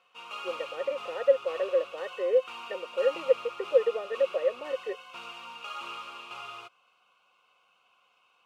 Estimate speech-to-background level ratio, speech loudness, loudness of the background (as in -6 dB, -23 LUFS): 12.0 dB, -29.0 LUFS, -41.0 LUFS